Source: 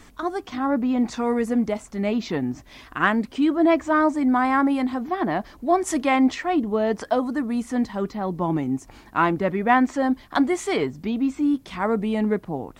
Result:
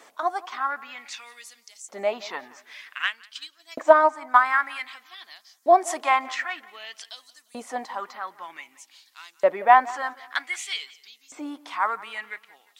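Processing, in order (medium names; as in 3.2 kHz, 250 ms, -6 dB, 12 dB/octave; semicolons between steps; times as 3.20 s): LFO high-pass saw up 0.53 Hz 540–6700 Hz; tape echo 175 ms, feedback 38%, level -19 dB, low-pass 4.6 kHz; 3.02–4.46 s: transient shaper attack +7 dB, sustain -5 dB; trim -1.5 dB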